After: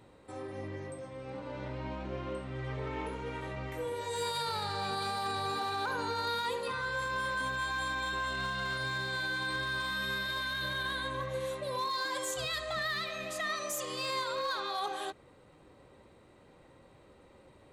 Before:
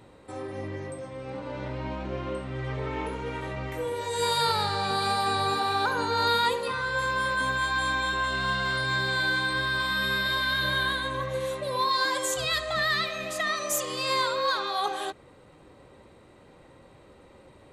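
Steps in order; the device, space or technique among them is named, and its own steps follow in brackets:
limiter into clipper (brickwall limiter −20 dBFS, peak gain reduction 6 dB; hard clipping −22.5 dBFS, distortion −25 dB)
level −5.5 dB

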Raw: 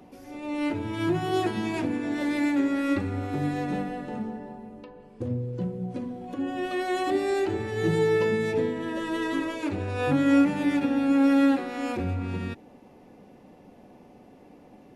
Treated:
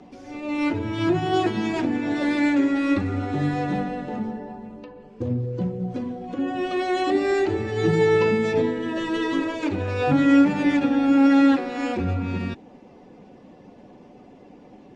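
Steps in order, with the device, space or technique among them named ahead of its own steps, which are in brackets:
clip after many re-uploads (low-pass filter 7,200 Hz 24 dB per octave; spectral magnitudes quantised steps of 15 dB)
level +4.5 dB

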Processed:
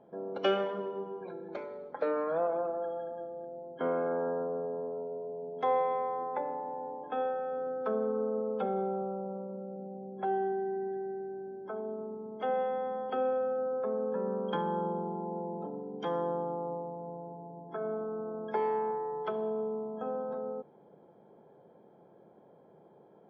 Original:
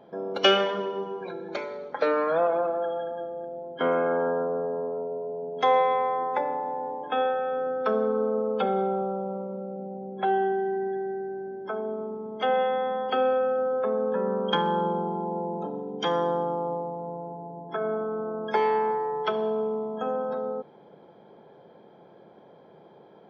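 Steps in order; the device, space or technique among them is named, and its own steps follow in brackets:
through cloth (high-shelf EQ 2,200 Hz −17 dB)
level −5.5 dB

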